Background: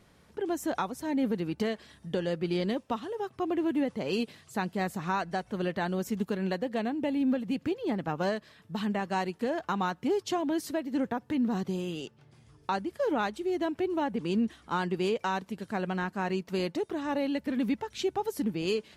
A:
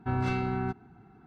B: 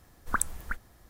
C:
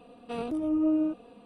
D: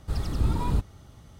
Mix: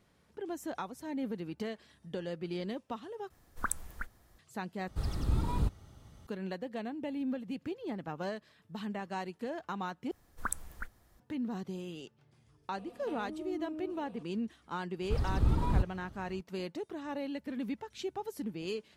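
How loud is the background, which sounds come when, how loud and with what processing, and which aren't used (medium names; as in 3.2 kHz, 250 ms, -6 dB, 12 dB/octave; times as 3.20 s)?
background -8 dB
3.30 s: replace with B -6 dB
4.88 s: replace with D -5.5 dB
10.11 s: replace with B -7.5 dB
12.78 s: add C -2 dB + compression 3:1, threshold -42 dBFS
15.02 s: add D -3 dB + treble shelf 3.8 kHz -8 dB
not used: A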